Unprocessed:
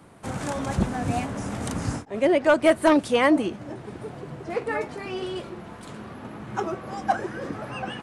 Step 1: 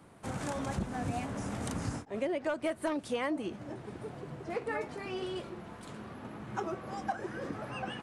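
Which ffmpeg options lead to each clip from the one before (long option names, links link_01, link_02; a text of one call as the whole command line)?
ffmpeg -i in.wav -af "acompressor=threshold=-24dB:ratio=6,volume=-6dB" out.wav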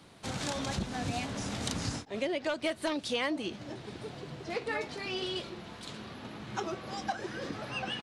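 ffmpeg -i in.wav -af "firequalizer=gain_entry='entry(1200,0);entry(3900,14);entry(8700,2)':delay=0.05:min_phase=1" out.wav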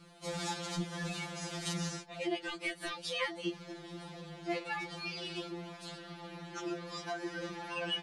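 ffmpeg -i in.wav -af "afftfilt=real='re*2.83*eq(mod(b,8),0)':imag='im*2.83*eq(mod(b,8),0)':win_size=2048:overlap=0.75" out.wav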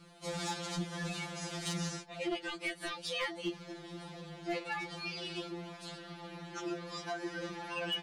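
ffmpeg -i in.wav -af "asoftclip=type=hard:threshold=-29dB" out.wav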